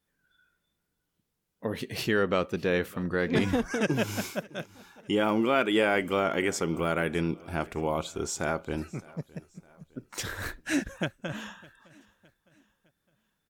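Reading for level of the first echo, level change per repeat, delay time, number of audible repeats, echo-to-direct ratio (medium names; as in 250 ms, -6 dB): -23.0 dB, -7.0 dB, 610 ms, 2, -22.0 dB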